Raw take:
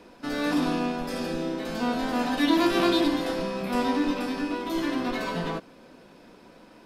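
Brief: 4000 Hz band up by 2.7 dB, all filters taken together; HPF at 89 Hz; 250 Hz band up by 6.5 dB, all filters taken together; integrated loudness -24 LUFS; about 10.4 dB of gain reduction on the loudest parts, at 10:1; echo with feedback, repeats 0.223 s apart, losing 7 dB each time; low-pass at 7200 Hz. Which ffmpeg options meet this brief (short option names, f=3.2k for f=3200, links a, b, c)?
-af "highpass=89,lowpass=7.2k,equalizer=f=250:t=o:g=8,equalizer=f=4k:t=o:g=3.5,acompressor=threshold=-22dB:ratio=10,aecho=1:1:223|446|669|892|1115:0.447|0.201|0.0905|0.0407|0.0183,volume=2.5dB"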